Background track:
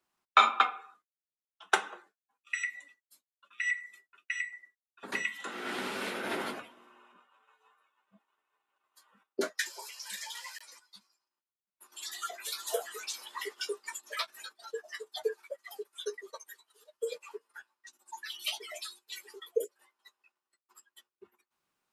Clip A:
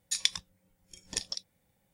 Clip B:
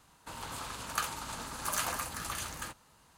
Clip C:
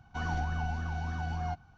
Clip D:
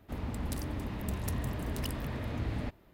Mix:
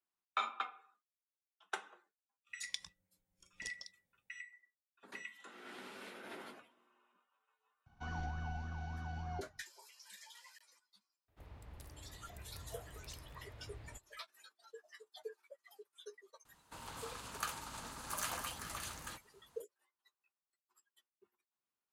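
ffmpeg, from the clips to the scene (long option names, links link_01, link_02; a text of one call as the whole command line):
ffmpeg -i bed.wav -i cue0.wav -i cue1.wav -i cue2.wav -i cue3.wav -filter_complex "[0:a]volume=-15dB[link_01];[4:a]equalizer=frequency=230:width=1.7:gain=-13[link_02];[1:a]atrim=end=1.93,asetpts=PTS-STARTPTS,volume=-15dB,afade=type=in:duration=0.004:curve=hsin,afade=type=out:start_time=1.926:duration=0.004:curve=hsin,adelay=2490[link_03];[3:a]atrim=end=1.77,asetpts=PTS-STARTPTS,volume=-9dB,afade=type=in:duration=0.004:curve=hsin,afade=type=out:start_time=1.766:duration=0.004:curve=hsin,adelay=346626S[link_04];[link_02]atrim=end=2.93,asetpts=PTS-STARTPTS,volume=-16dB,afade=type=in:duration=0.004:curve=hsin,afade=type=out:start_time=2.926:duration=0.004:curve=hsin,adelay=11280[link_05];[2:a]atrim=end=3.17,asetpts=PTS-STARTPTS,volume=-7dB,afade=type=in:duration=0.004:curve=hsin,afade=type=out:start_time=3.166:duration=0.004:curve=hsin,adelay=16450[link_06];[link_01][link_03][link_04][link_05][link_06]amix=inputs=5:normalize=0" out.wav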